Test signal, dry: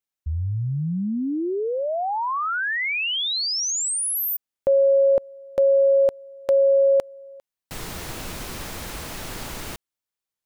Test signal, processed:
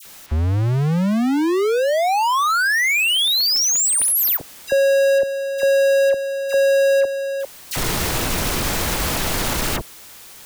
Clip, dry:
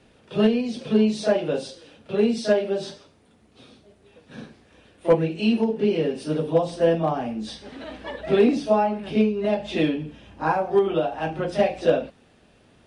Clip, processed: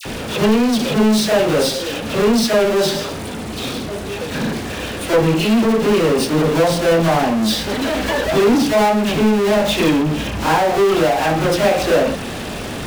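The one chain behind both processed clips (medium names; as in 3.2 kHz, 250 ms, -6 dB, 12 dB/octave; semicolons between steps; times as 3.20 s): power-law waveshaper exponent 0.35; phase dispersion lows, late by 55 ms, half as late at 1.7 kHz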